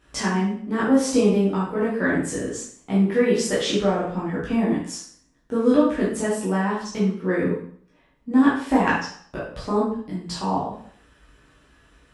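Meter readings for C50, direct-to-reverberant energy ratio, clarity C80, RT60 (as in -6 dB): 2.5 dB, -8.0 dB, 7.5 dB, 0.55 s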